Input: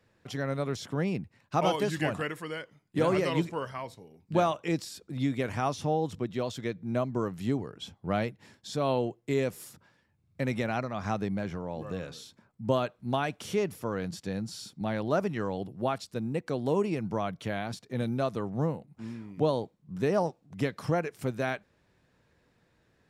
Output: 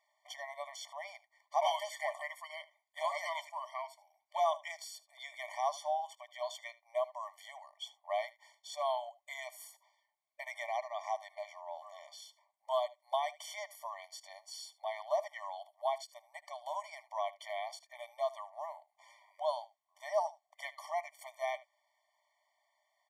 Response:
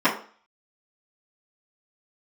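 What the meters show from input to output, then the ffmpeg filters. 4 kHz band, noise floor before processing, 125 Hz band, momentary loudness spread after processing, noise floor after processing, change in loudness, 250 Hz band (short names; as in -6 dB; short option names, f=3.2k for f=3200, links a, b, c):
-4.5 dB, -70 dBFS, under -40 dB, 14 LU, -82 dBFS, -8.0 dB, under -40 dB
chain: -af "aecho=1:1:76:0.106,afftfilt=real='re*eq(mod(floor(b*sr/1024/600),2),1)':imag='im*eq(mod(floor(b*sr/1024/600),2),1)':win_size=1024:overlap=0.75,volume=-2dB"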